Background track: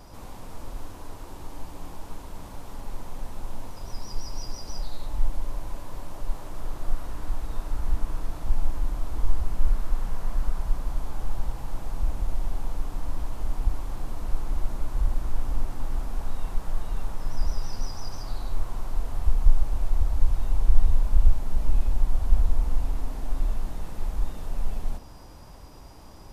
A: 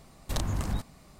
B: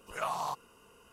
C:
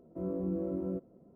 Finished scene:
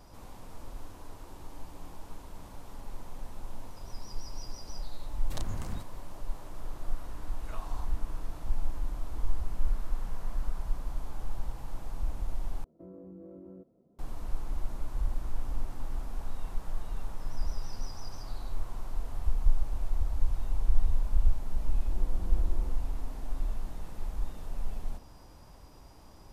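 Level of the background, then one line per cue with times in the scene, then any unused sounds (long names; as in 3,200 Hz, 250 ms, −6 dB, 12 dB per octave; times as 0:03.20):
background track −6.5 dB
0:05.01: mix in A −8 dB
0:07.31: mix in B −14 dB
0:12.64: overwrite with C −7 dB + downward compressor, threshold −37 dBFS
0:21.73: mix in C −15 dB + Butterworth low-pass 750 Hz 72 dB per octave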